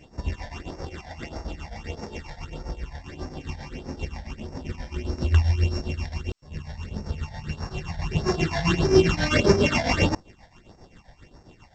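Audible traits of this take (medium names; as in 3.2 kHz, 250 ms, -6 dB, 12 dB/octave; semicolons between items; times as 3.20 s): a buzz of ramps at a fixed pitch in blocks of 16 samples; phasing stages 8, 1.6 Hz, lowest notch 350–3100 Hz; tremolo triangle 7.5 Hz, depth 80%; G.722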